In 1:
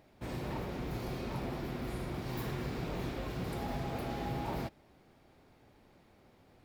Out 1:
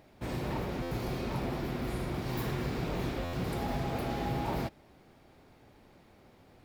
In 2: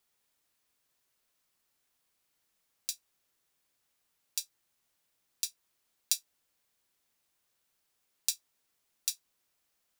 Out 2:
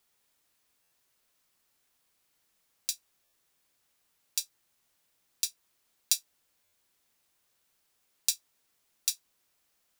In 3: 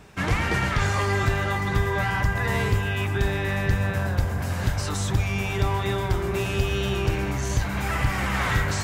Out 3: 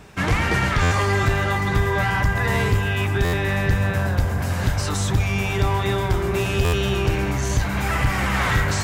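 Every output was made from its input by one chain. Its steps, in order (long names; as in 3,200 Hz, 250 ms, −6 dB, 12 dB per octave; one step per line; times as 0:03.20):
in parallel at −5 dB: hard clipping −19.5 dBFS
on the sum: buffer that repeats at 0:00.82/0:03.24/0:06.64, samples 512, times 7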